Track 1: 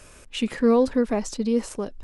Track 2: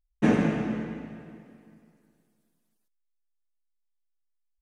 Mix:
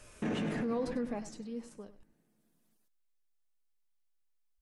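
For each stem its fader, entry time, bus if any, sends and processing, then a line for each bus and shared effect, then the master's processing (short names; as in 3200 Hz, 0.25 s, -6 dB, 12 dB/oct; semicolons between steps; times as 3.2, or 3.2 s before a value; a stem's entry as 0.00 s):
0.85 s -3.5 dB -> 1.48 s -15.5 dB, 0.00 s, no send, echo send -15 dB, flange 1.8 Hz, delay 7.9 ms, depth 2.6 ms, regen +50%
+2.0 dB, 0.00 s, no send, no echo send, auto duck -10 dB, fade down 0.90 s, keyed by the first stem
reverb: off
echo: echo 99 ms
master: limiter -26.5 dBFS, peak gain reduction 16 dB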